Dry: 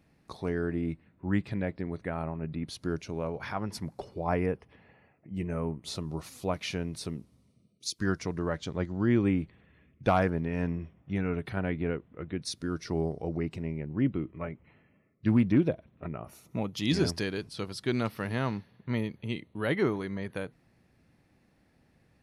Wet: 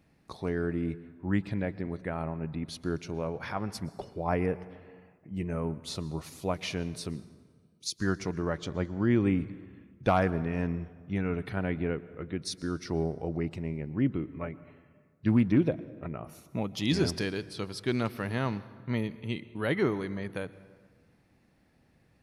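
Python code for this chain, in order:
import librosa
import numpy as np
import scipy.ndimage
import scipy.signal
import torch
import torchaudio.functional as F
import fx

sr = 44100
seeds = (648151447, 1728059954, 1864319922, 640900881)

y = fx.rev_plate(x, sr, seeds[0], rt60_s=1.6, hf_ratio=0.55, predelay_ms=105, drr_db=17.5)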